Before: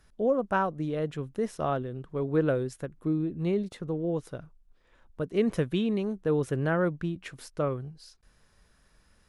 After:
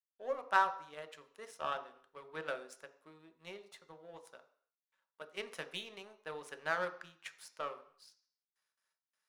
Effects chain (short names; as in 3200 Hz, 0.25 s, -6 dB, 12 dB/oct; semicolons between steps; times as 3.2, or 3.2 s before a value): HPF 1100 Hz 12 dB/oct; gate with hold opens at -59 dBFS; power-law curve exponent 1.4; on a send: reverb RT60 0.55 s, pre-delay 3 ms, DRR 6 dB; on the sum: gain +2.5 dB